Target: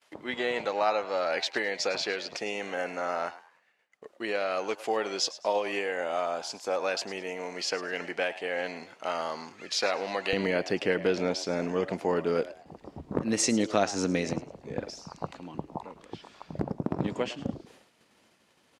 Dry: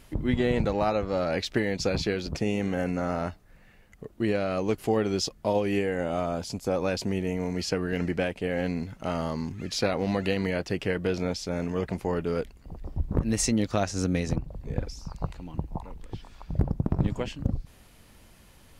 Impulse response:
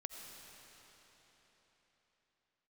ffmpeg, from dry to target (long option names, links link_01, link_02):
-filter_complex "[0:a]agate=range=-33dB:threshold=-46dB:ratio=3:detection=peak,asetnsamples=nb_out_samples=441:pad=0,asendcmd='10.33 highpass f 250',highpass=620,lowpass=7600,asplit=4[link_01][link_02][link_03][link_04];[link_02]adelay=105,afreqshift=110,volume=-16dB[link_05];[link_03]adelay=210,afreqshift=220,volume=-26.2dB[link_06];[link_04]adelay=315,afreqshift=330,volume=-36.3dB[link_07];[link_01][link_05][link_06][link_07]amix=inputs=4:normalize=0,volume=2.5dB"